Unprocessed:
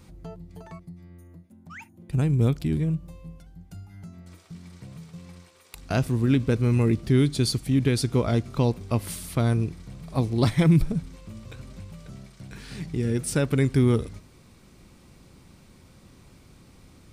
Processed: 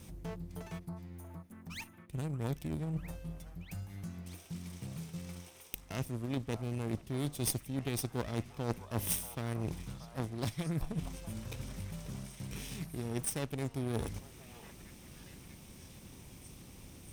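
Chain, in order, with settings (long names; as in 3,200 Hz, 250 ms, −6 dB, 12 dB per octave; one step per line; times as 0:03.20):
lower of the sound and its delayed copy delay 0.34 ms
reversed playback
downward compressor 5 to 1, threshold −37 dBFS, peak gain reduction 20 dB
reversed playback
high-shelf EQ 7,500 Hz +10.5 dB
echo through a band-pass that steps 635 ms, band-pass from 930 Hz, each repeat 0.7 octaves, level −4 dB
harmonic generator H 3 −13 dB, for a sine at −22.5 dBFS
level +9 dB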